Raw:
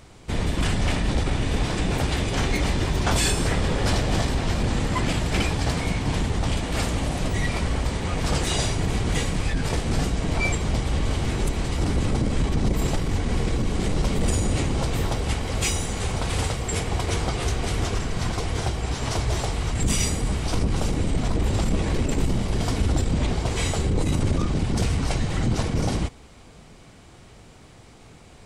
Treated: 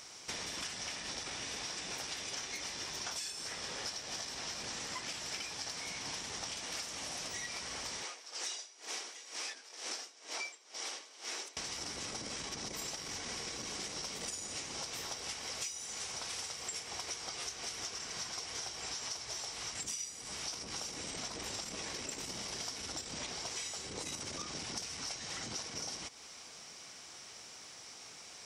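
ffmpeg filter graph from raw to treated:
ffmpeg -i in.wav -filter_complex "[0:a]asettb=1/sr,asplit=3[link_01][link_02][link_03];[link_01]atrim=end=8.034[link_04];[link_02]atrim=start=8.03:end=11.57,asetpts=PTS-STARTPTS,afade=type=in:duration=0.004:curve=qsin,afade=type=out:start_time=3.536:duration=0.004:curve=qsin,acrossover=split=9100[link_05][link_06];[link_06]acompressor=threshold=-49dB:ratio=4:attack=1:release=60[link_07];[link_05][link_07]amix=inputs=2:normalize=0,highpass=frequency=320:width=0.5412,highpass=frequency=320:width=1.3066,aeval=exprs='val(0)*pow(10,-25*(0.5-0.5*cos(2*PI*2.1*n/s))/20)':channel_layout=same[link_08];[link_03]atrim=start=11.566[link_09];[link_04][link_08]acrossfade=duration=0.004:curve1=hsin:curve2=qsin[link_10];[link_10][link_09]acrossfade=duration=0.004:curve1=qsin:curve2=hsin,highpass=frequency=1500:poles=1,equalizer=frequency=5600:width=3.4:gain=14,acompressor=threshold=-39dB:ratio=16,volume=1dB" out.wav

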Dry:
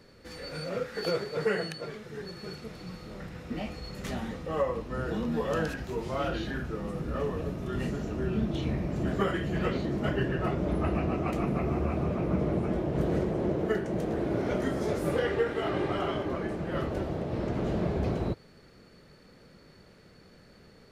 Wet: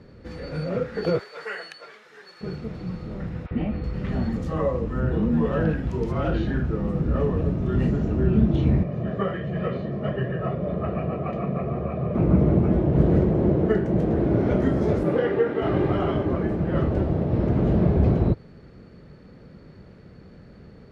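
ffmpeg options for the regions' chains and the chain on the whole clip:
ffmpeg -i in.wav -filter_complex "[0:a]asettb=1/sr,asplit=3[link_01][link_02][link_03];[link_01]atrim=end=1.194[link_04];[link_02]atrim=start=1.19:end=2.41,asetpts=PTS-STARTPTS,afade=type=in:duration=0.004:curve=qsin,afade=type=out:start_time=1.216:duration=0.004:curve=qsin,highpass=1100,highshelf=frequency=7600:gain=7[link_05];[link_03]atrim=start=2.406[link_06];[link_04][link_05]acrossfade=duration=0.004:curve1=hsin:curve2=qsin[link_07];[link_07][link_06]acrossfade=duration=0.004:curve1=qsin:curve2=hsin,asettb=1/sr,asplit=3[link_08][link_09][link_10];[link_08]atrim=end=3.464[link_11];[link_09]atrim=start=3.46:end=6.25,asetpts=PTS-STARTPTS,afade=type=in:duration=0.004:curve=qsin,afade=type=out:start_time=2.786:duration=0.004:curve=qsin,acompressor=mode=upward:threshold=-32dB:ratio=2.5:attack=3.2:release=140:knee=2.83:detection=peak,acrossover=split=740|3900[link_12][link_13][link_14];[link_12]adelay=50[link_15];[link_14]adelay=380[link_16];[link_15][link_13][link_16]amix=inputs=3:normalize=0,atrim=end_sample=123039[link_17];[link_10]atrim=start=6.246[link_18];[link_11][link_17]acrossfade=duration=0.004:curve1=hsin:curve2=qsin[link_19];[link_19][link_18]acrossfade=duration=0.004:curve1=qsin:curve2=hsin,asettb=1/sr,asplit=3[link_20][link_21][link_22];[link_20]atrim=end=8.834[link_23];[link_21]atrim=start=8.83:end=12.15,asetpts=PTS-STARTPTS,afade=type=in:duration=0.004:curve=qsin,afade=type=out:start_time=3.316:duration=0.004:curve=qsin,highpass=160,lowpass=4200,aecho=1:1:1.7:0.66,atrim=end_sample=146412,flanger=delay=6.1:depth=5.2:regen=86:speed=1.3:shape=triangular[link_24];[link_22]atrim=start=12.146[link_25];[link_23][link_24]acrossfade=duration=0.004:curve1=hsin:curve2=qsin[link_26];[link_26][link_25]acrossfade=duration=0.004:curve1=qsin:curve2=hsin,asettb=1/sr,asplit=3[link_27][link_28][link_29];[link_27]atrim=end=15.034[link_30];[link_28]atrim=start=15.03:end=15.62,asetpts=PTS-STARTPTS,afade=type=in:duration=0.004:curve=qsin,afade=type=out:start_time=0.586:duration=0.004:curve=qsin,highpass=180,equalizer=frequency=8100:width_type=o:width=1.6:gain=-6.5[link_31];[link_29]atrim=start=15.616[link_32];[link_30][link_31]acrossfade=duration=0.004:curve1=hsin:curve2=qsin[link_33];[link_33][link_32]acrossfade=duration=0.004:curve1=qsin:curve2=hsin,highpass=frequency=130:poles=1,aemphasis=mode=reproduction:type=riaa,volume=3.5dB" out.wav

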